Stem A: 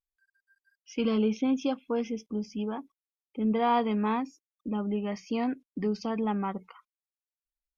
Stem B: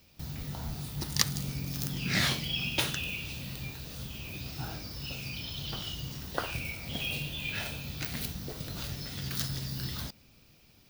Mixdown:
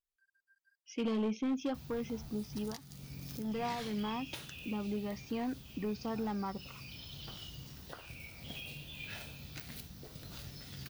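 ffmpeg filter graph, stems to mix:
-filter_complex "[0:a]asoftclip=type=hard:threshold=-23.5dB,volume=-3.5dB[a];[1:a]adelay=1550,volume=-9.5dB[b];[a][b]amix=inputs=2:normalize=0,alimiter=level_in=5dB:limit=-24dB:level=0:latency=1:release=457,volume=-5dB"

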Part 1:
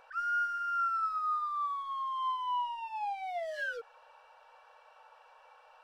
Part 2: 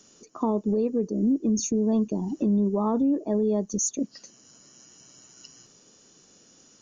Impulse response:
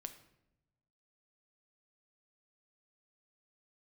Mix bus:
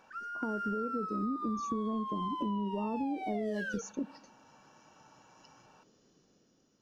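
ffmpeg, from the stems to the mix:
-filter_complex "[0:a]acompressor=threshold=-36dB:ratio=6,volume=2dB,asplit=2[a][b];[b]volume=-9dB[c];[1:a]lowpass=f=5.7k:w=0.5412,lowpass=f=5.7k:w=1.3066,dynaudnorm=f=140:g=9:m=4.5dB,tiltshelf=f=1.1k:g=4.5,volume=-15dB,asplit=3[d][e][f];[e]volume=-8.5dB[g];[f]apad=whole_len=257228[h];[a][h]sidechaingate=range=-9dB:threshold=-48dB:ratio=16:detection=peak[i];[2:a]atrim=start_sample=2205[j];[c][g]amix=inputs=2:normalize=0[k];[k][j]afir=irnorm=-1:irlink=0[l];[i][d][l]amix=inputs=3:normalize=0,acompressor=threshold=-31dB:ratio=6"

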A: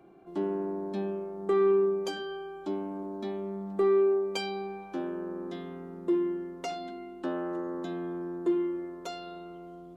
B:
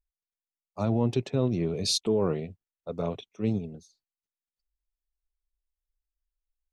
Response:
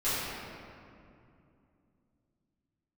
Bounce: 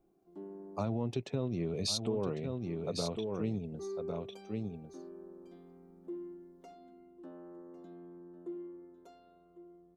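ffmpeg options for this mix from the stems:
-filter_complex "[0:a]equalizer=f=3.2k:w=0.32:g=-12.5,volume=-14dB,asplit=2[a][b];[b]volume=-15dB[c];[1:a]volume=2.5dB,asplit=3[d][e][f];[e]volume=-9dB[g];[f]apad=whole_len=439643[h];[a][h]sidechaincompress=threshold=-43dB:ratio=8:attack=16:release=127[i];[c][g]amix=inputs=2:normalize=0,aecho=0:1:1101:1[j];[i][d][j]amix=inputs=3:normalize=0,acompressor=threshold=-34dB:ratio=3"

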